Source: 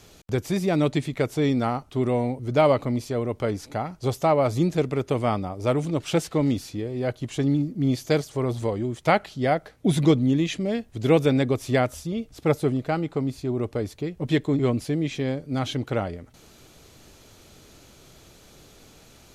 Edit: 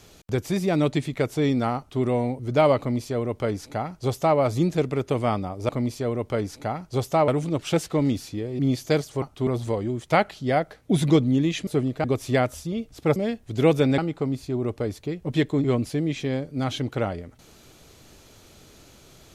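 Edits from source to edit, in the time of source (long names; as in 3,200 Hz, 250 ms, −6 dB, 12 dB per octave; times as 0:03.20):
0:01.77–0:02.02: duplicate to 0:08.42
0:02.79–0:04.38: duplicate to 0:05.69
0:07.00–0:07.79: remove
0:10.62–0:11.44: swap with 0:12.56–0:12.93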